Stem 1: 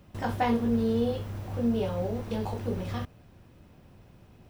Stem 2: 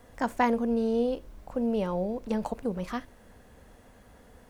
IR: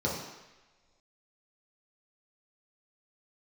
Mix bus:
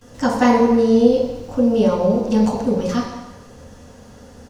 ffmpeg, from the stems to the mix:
-filter_complex "[0:a]volume=0.398[s0];[1:a]adelay=13,volume=1.41,asplit=2[s1][s2];[s2]volume=0.596[s3];[2:a]atrim=start_sample=2205[s4];[s3][s4]afir=irnorm=-1:irlink=0[s5];[s0][s1][s5]amix=inputs=3:normalize=0,equalizer=f=5500:w=0.49:g=12"

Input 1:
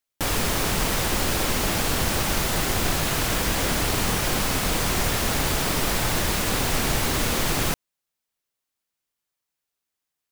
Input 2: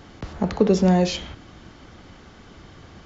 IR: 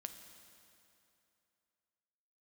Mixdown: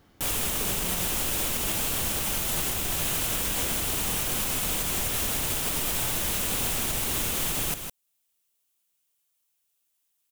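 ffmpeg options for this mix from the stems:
-filter_complex "[0:a]aexciter=amount=1.2:drive=8.6:freq=2600,volume=0.891,asplit=2[s0][s1];[s1]volume=0.282[s2];[1:a]volume=0.188[s3];[s2]aecho=0:1:157:1[s4];[s0][s3][s4]amix=inputs=3:normalize=0,alimiter=limit=0.133:level=0:latency=1:release=380"

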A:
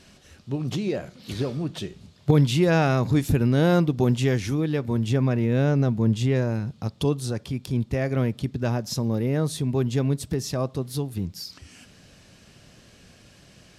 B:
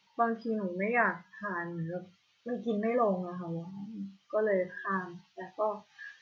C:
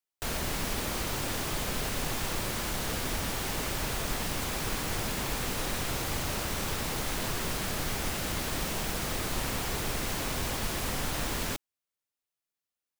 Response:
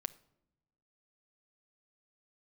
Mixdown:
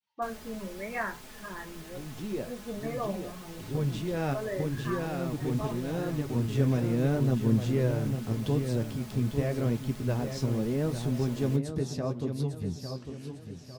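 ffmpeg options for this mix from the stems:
-filter_complex "[0:a]acrossover=split=9900[s0][s1];[s1]acompressor=threshold=0.002:ratio=4:attack=1:release=60[s2];[s0][s2]amix=inputs=2:normalize=0,equalizer=f=260:w=0.31:g=5.5,adelay=1450,volume=0.501,asplit=2[s3][s4];[s4]volume=0.376[s5];[1:a]agate=range=0.0224:threshold=0.00112:ratio=3:detection=peak,volume=0.794,asplit=2[s6][s7];[2:a]aecho=1:1:4.7:0.65,volume=0.224[s8];[s7]apad=whole_len=672015[s9];[s3][s9]sidechaincompress=threshold=0.00501:ratio=8:attack=16:release=589[s10];[s5]aecho=0:1:851|1702|2553|3404|4255|5106:1|0.42|0.176|0.0741|0.0311|0.0131[s11];[s10][s6][s8][s11]amix=inputs=4:normalize=0,flanger=delay=7.8:depth=7.5:regen=-42:speed=0.81:shape=sinusoidal"

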